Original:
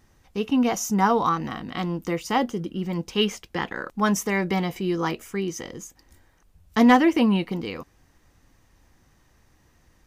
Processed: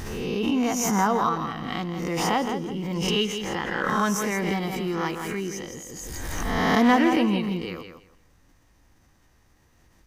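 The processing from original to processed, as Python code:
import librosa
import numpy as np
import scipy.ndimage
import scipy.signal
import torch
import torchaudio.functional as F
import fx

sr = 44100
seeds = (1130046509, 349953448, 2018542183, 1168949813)

y = fx.spec_swells(x, sr, rise_s=0.46)
y = fx.echo_feedback(y, sr, ms=166, feedback_pct=20, wet_db=-8.0)
y = fx.pre_swell(y, sr, db_per_s=24.0)
y = F.gain(torch.from_numpy(y), -4.0).numpy()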